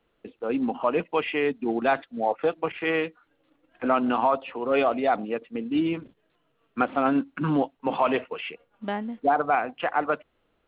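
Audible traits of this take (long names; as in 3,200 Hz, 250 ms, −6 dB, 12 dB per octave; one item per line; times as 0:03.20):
background noise floor −71 dBFS
spectral slope −4.0 dB per octave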